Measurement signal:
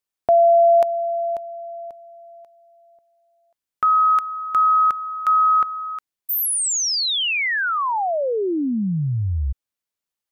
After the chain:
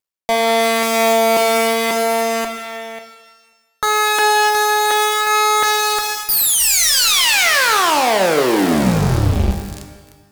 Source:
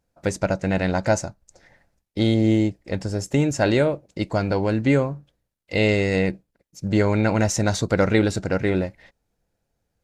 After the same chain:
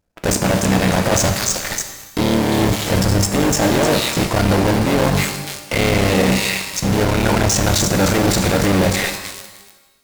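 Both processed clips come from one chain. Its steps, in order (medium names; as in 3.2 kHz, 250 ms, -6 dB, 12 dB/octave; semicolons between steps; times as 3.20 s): cycle switcher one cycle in 3, muted; feedback echo behind a high-pass 303 ms, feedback 30%, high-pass 4.6 kHz, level -6 dB; reverse; compression 10:1, threshold -29 dBFS; reverse; vibrato 0.6 Hz 7.3 cents; in parallel at -6 dB: fuzz box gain 55 dB, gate -52 dBFS; on the sum: pitch-shifted reverb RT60 1.1 s, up +12 st, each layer -8 dB, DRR 6 dB; trim +3.5 dB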